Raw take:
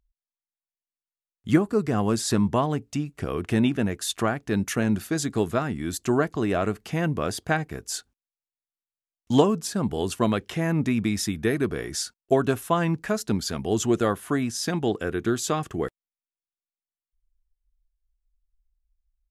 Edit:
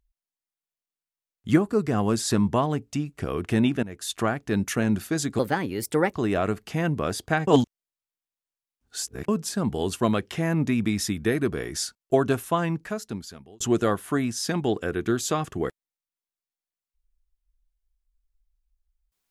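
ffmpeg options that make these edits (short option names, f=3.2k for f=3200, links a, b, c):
-filter_complex "[0:a]asplit=7[a][b][c][d][e][f][g];[a]atrim=end=3.83,asetpts=PTS-STARTPTS,afade=t=out:st=3.826:d=0.004:c=hsin:silence=0.149624[h];[b]atrim=start=3.83:end=5.394,asetpts=PTS-STARTPTS,afade=t=in:d=0.54:c=qsin:silence=0.149624[i];[c]atrim=start=5.39:end=6.32,asetpts=PTS-STARTPTS,asetrate=55125,aresample=44100,atrim=end_sample=32810,asetpts=PTS-STARTPTS[j];[d]atrim=start=6.316:end=7.662[k];[e]atrim=start=7.658:end=9.472,asetpts=PTS-STARTPTS,areverse[l];[f]atrim=start=9.468:end=13.79,asetpts=PTS-STARTPTS,afade=t=out:st=3.122:d=1.2[m];[g]atrim=start=13.79,asetpts=PTS-STARTPTS,afade=t=in:d=0.004:c=hsin[n];[h][i]concat=n=2:v=0:a=1[o];[o][j]acrossfade=d=0.004:c1=hsin:c2=hsin[p];[p][k]acrossfade=d=0.004:c1=hsin:c2=hsin[q];[q][l]acrossfade=d=0.004:c1=hsin:c2=hsin[r];[m][n]concat=n=2:v=0:a=1[s];[r][s]acrossfade=d=0.004:c1=hsin:c2=hsin"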